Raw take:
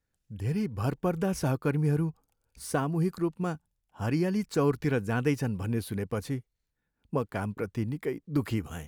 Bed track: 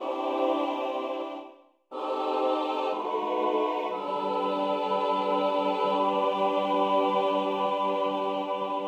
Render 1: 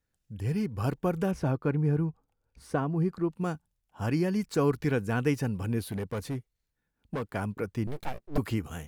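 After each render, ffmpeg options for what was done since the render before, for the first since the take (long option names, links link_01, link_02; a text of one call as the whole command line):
ffmpeg -i in.wav -filter_complex "[0:a]asettb=1/sr,asplit=3[link_01][link_02][link_03];[link_01]atrim=end=1.314[link_04];[link_02]atrim=start=1.31:end=3.3,asetpts=PTS-STARTPTS,afade=type=in:duration=0.004:curve=qsin,afade=type=out:start_time=1.986:duration=0.004:curve=qsin,lowpass=frequency=1700:poles=1[link_05];[link_03]atrim=start=3.296[link_06];[link_04][link_05]acrossfade=duration=0.004:curve1=hsin:curve2=qsin[link_07];[link_07][link_06]acrossfade=duration=0.004:curve1=qsin:curve2=hsin,asettb=1/sr,asplit=3[link_08][link_09][link_10];[link_08]atrim=end=5.844[link_11];[link_09]atrim=start=5.84:end=7.23,asetpts=PTS-STARTPTS,afade=type=in:duration=0.004:curve=qsin,afade=type=out:start_time=1.386:duration=0.004:curve=qsin,asoftclip=type=hard:threshold=-28.5dB[link_12];[link_10]atrim=start=7.226[link_13];[link_11][link_12]acrossfade=duration=0.004:curve1=hsin:curve2=qsin[link_14];[link_14][link_13]acrossfade=duration=0.004:curve1=qsin:curve2=hsin,asettb=1/sr,asplit=3[link_15][link_16][link_17];[link_15]atrim=end=7.874[link_18];[link_16]atrim=start=7.87:end=8.38,asetpts=PTS-STARTPTS,afade=type=in:duration=0.004:curve=qsin,afade=type=out:start_time=0.506:duration=0.004:curve=qsin,aeval=exprs='abs(val(0))':channel_layout=same[link_19];[link_17]atrim=start=8.376[link_20];[link_18][link_19]acrossfade=duration=0.004:curve1=hsin:curve2=qsin[link_21];[link_21][link_20]acrossfade=duration=0.004:curve1=qsin:curve2=hsin" out.wav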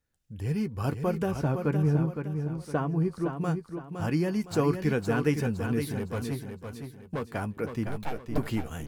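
ffmpeg -i in.wav -filter_complex "[0:a]asplit=2[link_01][link_02];[link_02]adelay=13,volume=-12dB[link_03];[link_01][link_03]amix=inputs=2:normalize=0,aecho=1:1:512|1024|1536|2048:0.447|0.161|0.0579|0.0208" out.wav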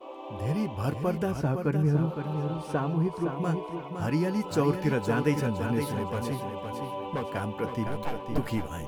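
ffmpeg -i in.wav -i bed.wav -filter_complex "[1:a]volume=-11.5dB[link_01];[0:a][link_01]amix=inputs=2:normalize=0" out.wav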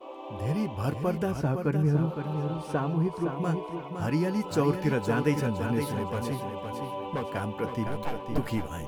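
ffmpeg -i in.wav -af anull out.wav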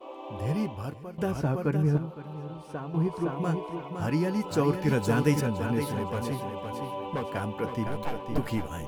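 ffmpeg -i in.wav -filter_complex "[0:a]asettb=1/sr,asplit=3[link_01][link_02][link_03];[link_01]atrim=end=4.884[link_04];[link_02]atrim=start=4.88:end=5.41,asetpts=PTS-STARTPTS,afade=type=in:duration=0.004:curve=qsin,afade=type=out:start_time=0.526:duration=0.004:curve=qsin,bass=frequency=250:gain=4,treble=frequency=4000:gain=7[link_05];[link_03]atrim=start=5.406[link_06];[link_04][link_05]acrossfade=duration=0.004:curve1=hsin:curve2=qsin[link_07];[link_07][link_06]acrossfade=duration=0.004:curve1=qsin:curve2=hsin,asplit=4[link_08][link_09][link_10][link_11];[link_08]atrim=end=1.18,asetpts=PTS-STARTPTS,afade=type=out:start_time=0.65:duration=0.53:curve=qua:silence=0.177828[link_12];[link_09]atrim=start=1.18:end=1.982,asetpts=PTS-STARTPTS,afade=type=in:duration=0.004:curve=hsin:silence=0.177828[link_13];[link_10]atrim=start=1.978:end=2.942,asetpts=PTS-STARTPTS,volume=-8dB[link_14];[link_11]atrim=start=2.938[link_15];[link_12][link_13]concat=n=2:v=0:a=1[link_16];[link_16][link_14]acrossfade=duration=0.004:curve1=hsin:curve2=hsin[link_17];[link_17][link_15]acrossfade=duration=0.004:curve1=hsin:curve2=hsin" out.wav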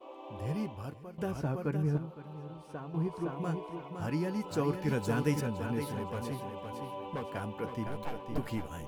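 ffmpeg -i in.wav -af "volume=-6dB" out.wav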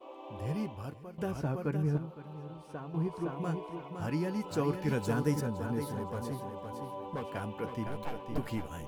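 ffmpeg -i in.wav -filter_complex "[0:a]asettb=1/sr,asplit=3[link_01][link_02][link_03];[link_01]atrim=end=5.134[link_04];[link_02]atrim=start=5.13:end=7.18,asetpts=PTS-STARTPTS,afade=type=in:duration=0.004:curve=qsin,afade=type=out:start_time=2.046:duration=0.004:curve=qsin,equalizer=frequency=2600:width_type=o:width=0.73:gain=-9[link_05];[link_03]atrim=start=7.176[link_06];[link_04][link_05]acrossfade=duration=0.004:curve1=hsin:curve2=qsin[link_07];[link_07][link_06]acrossfade=duration=0.004:curve1=qsin:curve2=hsin" out.wav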